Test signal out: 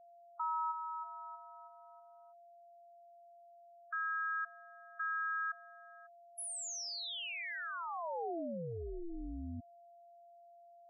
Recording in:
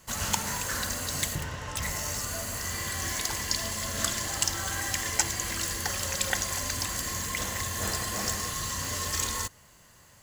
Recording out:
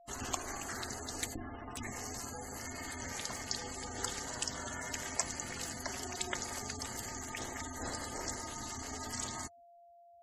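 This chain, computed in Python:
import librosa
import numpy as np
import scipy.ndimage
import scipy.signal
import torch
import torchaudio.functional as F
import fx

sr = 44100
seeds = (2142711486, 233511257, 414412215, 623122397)

y = fx.dynamic_eq(x, sr, hz=590.0, q=1.2, threshold_db=-50.0, ratio=4.0, max_db=4)
y = y * np.sin(2.0 * np.pi * 170.0 * np.arange(len(y)) / sr)
y = y + 10.0 ** (-51.0 / 20.0) * np.sin(2.0 * np.pi * 690.0 * np.arange(len(y)) / sr)
y = fx.spec_gate(y, sr, threshold_db=-15, keep='strong')
y = F.gain(torch.from_numpy(y), -6.0).numpy()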